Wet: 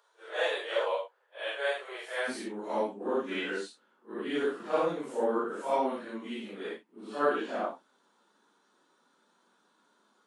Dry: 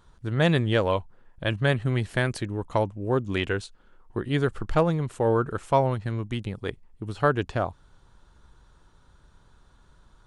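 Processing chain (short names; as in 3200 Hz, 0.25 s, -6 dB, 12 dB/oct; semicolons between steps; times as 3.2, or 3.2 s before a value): phase scrambler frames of 0.2 s; steep high-pass 440 Hz 48 dB/oct, from 2.27 s 210 Hz; gain -4.5 dB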